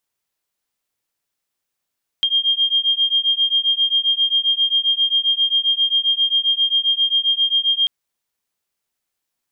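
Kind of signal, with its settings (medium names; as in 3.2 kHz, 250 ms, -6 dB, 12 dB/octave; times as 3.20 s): beating tones 3.21 kHz, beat 7.5 Hz, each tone -18 dBFS 5.64 s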